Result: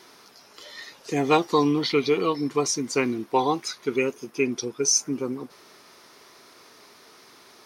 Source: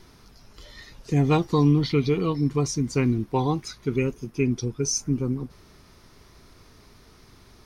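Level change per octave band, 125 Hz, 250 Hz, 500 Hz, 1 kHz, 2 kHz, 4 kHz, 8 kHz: -13.0, -2.5, +3.0, +5.5, +5.5, +5.5, +5.5 dB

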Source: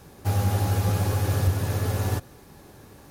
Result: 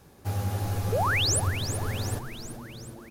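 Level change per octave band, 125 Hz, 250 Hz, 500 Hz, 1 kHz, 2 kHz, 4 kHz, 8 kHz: -6.0, -4.5, -1.0, +1.0, +6.0, +8.5, +6.0 dB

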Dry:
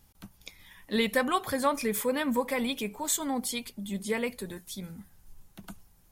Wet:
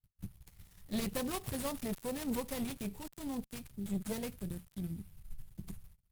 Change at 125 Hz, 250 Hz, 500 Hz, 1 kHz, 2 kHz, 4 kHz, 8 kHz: +1.5, -6.0, -11.5, -14.5, -15.5, -11.5, -11.5 dB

